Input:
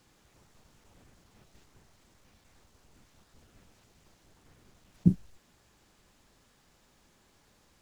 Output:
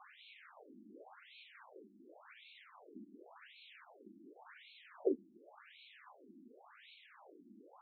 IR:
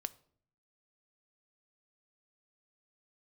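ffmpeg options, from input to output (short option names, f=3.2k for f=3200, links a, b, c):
-af "aphaser=in_gain=1:out_gain=1:delay=2:decay=0.23:speed=0.29:type=triangular,afftfilt=real='re*between(b*sr/1024,250*pow(3100/250,0.5+0.5*sin(2*PI*0.9*pts/sr))/1.41,250*pow(3100/250,0.5+0.5*sin(2*PI*0.9*pts/sr))*1.41)':imag='im*between(b*sr/1024,250*pow(3100/250,0.5+0.5*sin(2*PI*0.9*pts/sr))/1.41,250*pow(3100/250,0.5+0.5*sin(2*PI*0.9*pts/sr))*1.41)':win_size=1024:overlap=0.75,volume=14.5dB"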